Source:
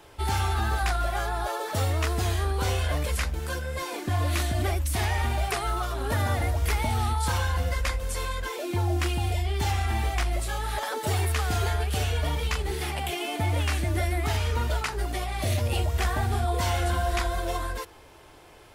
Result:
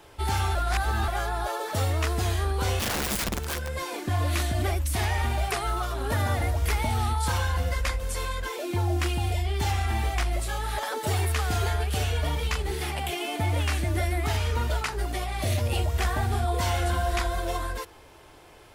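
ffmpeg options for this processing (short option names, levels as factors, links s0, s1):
-filter_complex "[0:a]asplit=3[s0][s1][s2];[s0]afade=t=out:st=2.79:d=0.02[s3];[s1]aeval=exprs='(mod(15*val(0)+1,2)-1)/15':c=same,afade=t=in:st=2.79:d=0.02,afade=t=out:st=3.67:d=0.02[s4];[s2]afade=t=in:st=3.67:d=0.02[s5];[s3][s4][s5]amix=inputs=3:normalize=0,asplit=3[s6][s7][s8];[s6]atrim=end=0.552[s9];[s7]atrim=start=0.548:end=1.082,asetpts=PTS-STARTPTS,areverse[s10];[s8]atrim=start=1.078[s11];[s9][s10]acrossfade=d=0.004:c1=hsin:c2=hsin[s12];[s12][s11]acrossfade=d=0.004:c1=hsin:c2=hsin"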